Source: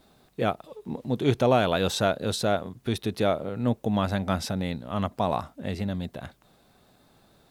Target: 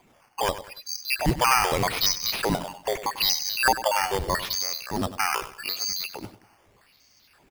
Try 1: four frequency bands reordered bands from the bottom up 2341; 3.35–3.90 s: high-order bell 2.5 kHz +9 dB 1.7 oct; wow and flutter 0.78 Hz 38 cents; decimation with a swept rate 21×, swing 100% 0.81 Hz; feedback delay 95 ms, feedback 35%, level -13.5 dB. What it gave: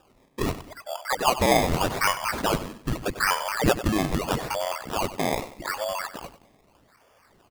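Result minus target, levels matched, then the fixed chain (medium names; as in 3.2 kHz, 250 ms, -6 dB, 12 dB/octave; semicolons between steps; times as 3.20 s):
decimation with a swept rate: distortion +5 dB
four frequency bands reordered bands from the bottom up 2341; 3.35–3.90 s: high-order bell 2.5 kHz +9 dB 1.7 oct; wow and flutter 0.78 Hz 38 cents; decimation with a swept rate 8×, swing 100% 0.81 Hz; feedback delay 95 ms, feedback 35%, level -13.5 dB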